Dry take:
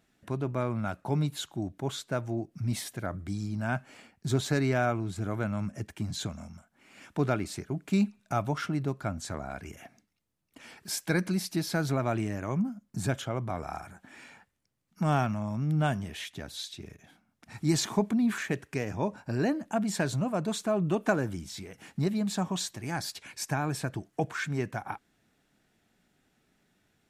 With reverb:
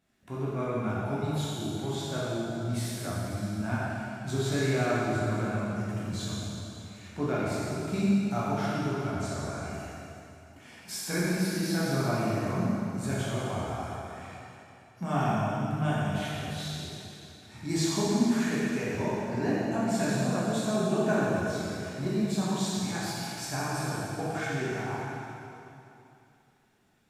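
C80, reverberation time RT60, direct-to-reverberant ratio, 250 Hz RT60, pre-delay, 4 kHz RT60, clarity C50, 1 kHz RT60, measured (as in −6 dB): −2.5 dB, 2.8 s, −9.0 dB, 2.9 s, 4 ms, 2.7 s, −4.0 dB, 2.9 s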